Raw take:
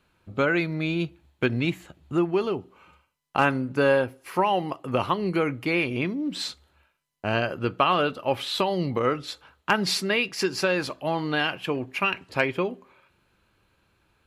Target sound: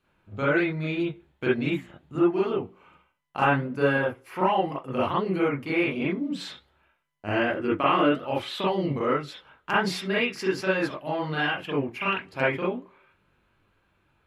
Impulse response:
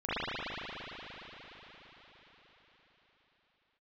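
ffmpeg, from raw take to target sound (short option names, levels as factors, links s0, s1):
-filter_complex "[0:a]asettb=1/sr,asplit=3[s0][s1][s2];[s0]atrim=end=7.264[s3];[s1]atrim=start=7.26:end=8.18,asetpts=PTS-STARTPTS,afade=t=in:d=0.004:c=qsin,afade=t=out:st=0.916:d=0.004:c=qsin,equalizer=f=315:t=o:w=0.33:g=11,equalizer=f=2000:t=o:w=0.33:g=7,equalizer=f=4000:t=o:w=0.33:g=-7,equalizer=f=8000:t=o:w=0.33:g=4[s4];[s2]atrim=start=8.176[s5];[s3][s4]acrossfade=d=0.004:c1=hsin:c2=qsin[s6];[s6][s5]acrossfade=d=0.004:c1=qsin:c2=hsin[s7];[1:a]atrim=start_sample=2205,atrim=end_sample=3087[s8];[s7][s8]afir=irnorm=-1:irlink=0,flanger=delay=2.5:depth=6.2:regen=81:speed=1.3:shape=sinusoidal"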